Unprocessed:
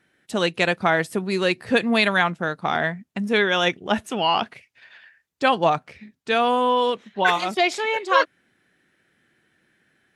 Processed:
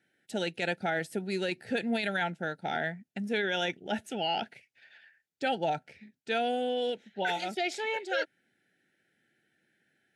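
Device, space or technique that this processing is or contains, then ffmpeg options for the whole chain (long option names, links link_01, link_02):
PA system with an anti-feedback notch: -af "highpass=110,asuperstop=centerf=1100:order=12:qfactor=2.6,alimiter=limit=-12.5dB:level=0:latency=1:release=13,volume=-8.5dB"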